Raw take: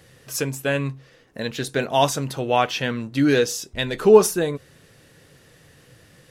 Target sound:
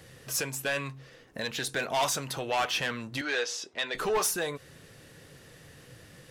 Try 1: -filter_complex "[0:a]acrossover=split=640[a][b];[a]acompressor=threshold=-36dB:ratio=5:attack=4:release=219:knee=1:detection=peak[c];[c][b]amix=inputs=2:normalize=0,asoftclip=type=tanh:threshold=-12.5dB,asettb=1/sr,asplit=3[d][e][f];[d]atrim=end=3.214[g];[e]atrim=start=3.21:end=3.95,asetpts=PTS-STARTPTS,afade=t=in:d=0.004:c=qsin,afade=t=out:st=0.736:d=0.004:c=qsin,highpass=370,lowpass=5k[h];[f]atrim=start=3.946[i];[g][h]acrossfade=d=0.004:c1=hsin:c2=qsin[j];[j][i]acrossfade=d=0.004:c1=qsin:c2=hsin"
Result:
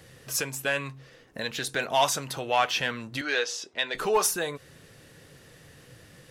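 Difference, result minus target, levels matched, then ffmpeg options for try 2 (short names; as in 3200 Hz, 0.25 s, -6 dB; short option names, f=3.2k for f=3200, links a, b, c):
soft clip: distortion -11 dB
-filter_complex "[0:a]acrossover=split=640[a][b];[a]acompressor=threshold=-36dB:ratio=5:attack=4:release=219:knee=1:detection=peak[c];[c][b]amix=inputs=2:normalize=0,asoftclip=type=tanh:threshold=-22.5dB,asettb=1/sr,asplit=3[d][e][f];[d]atrim=end=3.214[g];[e]atrim=start=3.21:end=3.95,asetpts=PTS-STARTPTS,afade=t=in:d=0.004:c=qsin,afade=t=out:st=0.736:d=0.004:c=qsin,highpass=370,lowpass=5k[h];[f]atrim=start=3.946[i];[g][h]acrossfade=d=0.004:c1=hsin:c2=qsin[j];[j][i]acrossfade=d=0.004:c1=qsin:c2=hsin"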